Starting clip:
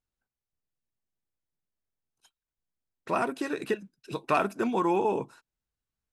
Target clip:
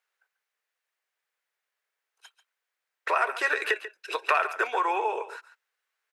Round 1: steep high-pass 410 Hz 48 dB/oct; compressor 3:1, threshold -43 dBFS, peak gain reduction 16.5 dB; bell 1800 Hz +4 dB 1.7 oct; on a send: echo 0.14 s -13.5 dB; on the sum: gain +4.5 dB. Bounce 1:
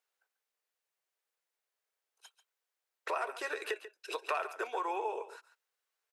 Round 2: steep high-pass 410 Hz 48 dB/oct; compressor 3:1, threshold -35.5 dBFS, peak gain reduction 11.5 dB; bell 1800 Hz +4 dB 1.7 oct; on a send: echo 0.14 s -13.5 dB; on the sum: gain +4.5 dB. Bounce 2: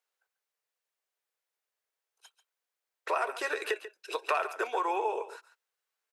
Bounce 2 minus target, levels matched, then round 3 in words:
2000 Hz band -3.5 dB
steep high-pass 410 Hz 48 dB/oct; compressor 3:1, threshold -35.5 dBFS, peak gain reduction 11.5 dB; bell 1800 Hz +13.5 dB 1.7 oct; on a send: echo 0.14 s -13.5 dB; on the sum: gain +4.5 dB

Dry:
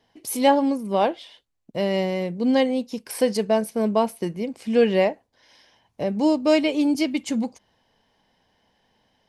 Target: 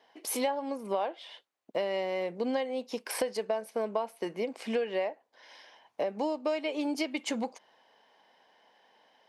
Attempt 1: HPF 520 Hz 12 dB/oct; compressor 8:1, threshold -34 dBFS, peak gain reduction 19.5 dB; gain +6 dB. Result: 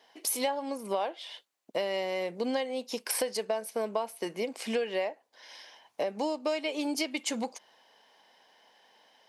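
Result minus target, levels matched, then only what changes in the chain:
8000 Hz band +5.0 dB
add after HPF: high shelf 3900 Hz -11.5 dB

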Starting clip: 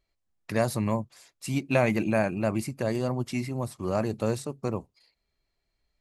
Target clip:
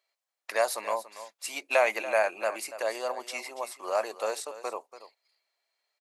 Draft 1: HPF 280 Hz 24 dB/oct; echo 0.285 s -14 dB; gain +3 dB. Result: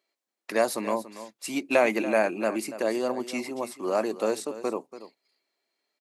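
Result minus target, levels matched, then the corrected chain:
250 Hz band +16.0 dB
HPF 560 Hz 24 dB/oct; echo 0.285 s -14 dB; gain +3 dB

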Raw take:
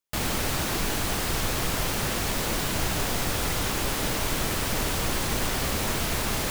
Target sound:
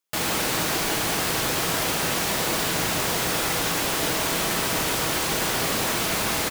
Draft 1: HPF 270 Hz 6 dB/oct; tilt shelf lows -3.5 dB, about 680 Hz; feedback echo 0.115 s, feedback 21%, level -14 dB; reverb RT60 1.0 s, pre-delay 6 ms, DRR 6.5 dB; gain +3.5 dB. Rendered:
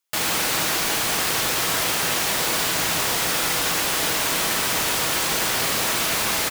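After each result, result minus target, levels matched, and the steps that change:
echo 44 ms early; 500 Hz band -3.5 dB
change: feedback echo 0.159 s, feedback 21%, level -14 dB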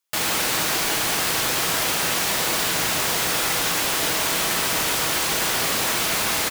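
500 Hz band -3.5 dB
remove: tilt shelf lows -3.5 dB, about 680 Hz

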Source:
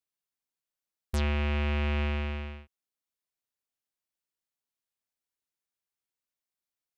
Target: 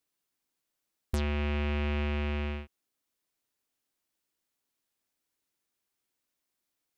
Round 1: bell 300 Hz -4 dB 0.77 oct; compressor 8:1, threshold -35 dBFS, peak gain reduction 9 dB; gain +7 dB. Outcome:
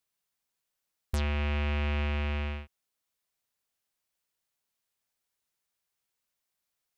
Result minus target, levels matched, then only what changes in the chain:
250 Hz band -3.5 dB
change: bell 300 Hz +6 dB 0.77 oct

